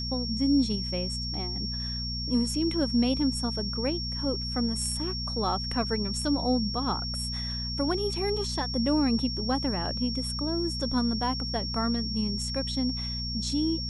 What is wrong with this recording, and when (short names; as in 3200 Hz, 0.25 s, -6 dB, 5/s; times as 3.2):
hum 60 Hz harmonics 4 -35 dBFS
tone 5500 Hz -33 dBFS